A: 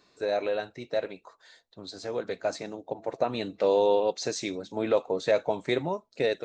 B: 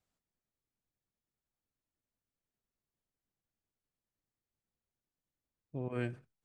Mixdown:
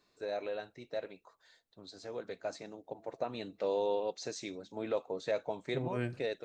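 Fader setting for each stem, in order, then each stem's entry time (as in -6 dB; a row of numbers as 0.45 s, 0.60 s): -9.5 dB, +0.5 dB; 0.00 s, 0.00 s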